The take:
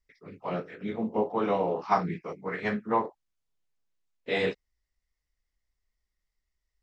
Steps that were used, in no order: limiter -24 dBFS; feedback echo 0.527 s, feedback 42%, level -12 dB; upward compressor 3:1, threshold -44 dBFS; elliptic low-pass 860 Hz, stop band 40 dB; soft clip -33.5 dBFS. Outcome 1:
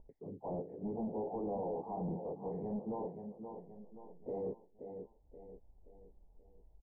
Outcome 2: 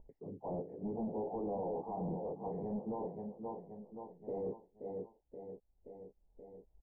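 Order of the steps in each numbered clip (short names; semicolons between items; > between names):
upward compressor > limiter > feedback echo > soft clip > elliptic low-pass; feedback echo > upward compressor > limiter > soft clip > elliptic low-pass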